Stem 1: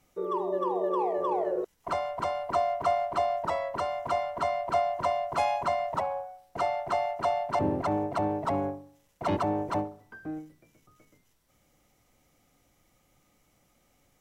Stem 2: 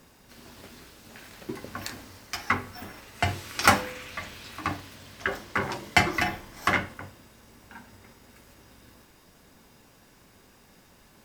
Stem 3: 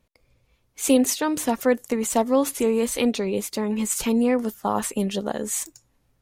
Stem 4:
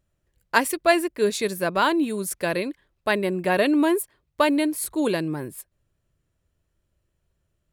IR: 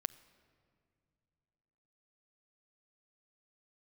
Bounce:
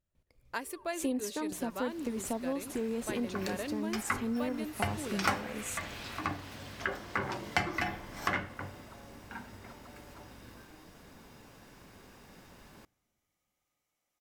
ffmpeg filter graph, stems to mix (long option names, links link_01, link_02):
-filter_complex "[0:a]highpass=frequency=820:poles=1,acompressor=threshold=-40dB:ratio=6,adelay=450,volume=-16dB,asplit=2[link_01][link_02];[link_02]volume=-10dB[link_03];[1:a]highshelf=frequency=4200:gain=-6,adelay=1600,volume=-0.5dB,asplit=2[link_04][link_05];[link_05]volume=-6dB[link_06];[2:a]lowshelf=frequency=270:gain=9.5,adelay=150,volume=-10.5dB[link_07];[3:a]volume=-14.5dB,asplit=2[link_08][link_09];[link_09]volume=-14dB[link_10];[4:a]atrim=start_sample=2205[link_11];[link_03][link_06][link_10]amix=inputs=3:normalize=0[link_12];[link_12][link_11]afir=irnorm=-1:irlink=0[link_13];[link_01][link_04][link_07][link_08][link_13]amix=inputs=5:normalize=0,acompressor=threshold=-36dB:ratio=2"